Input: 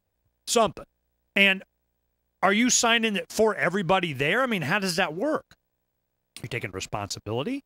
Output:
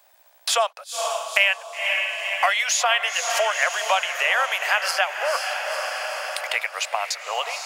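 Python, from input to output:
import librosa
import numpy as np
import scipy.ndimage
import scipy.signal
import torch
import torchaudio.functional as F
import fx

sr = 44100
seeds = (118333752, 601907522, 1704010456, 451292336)

p1 = scipy.signal.sosfilt(scipy.signal.butter(8, 610.0, 'highpass', fs=sr, output='sos'), x)
p2 = p1 + fx.echo_diffused(p1, sr, ms=488, feedback_pct=51, wet_db=-9.5, dry=0)
p3 = fx.band_squash(p2, sr, depth_pct=70)
y = F.gain(torch.from_numpy(p3), 4.0).numpy()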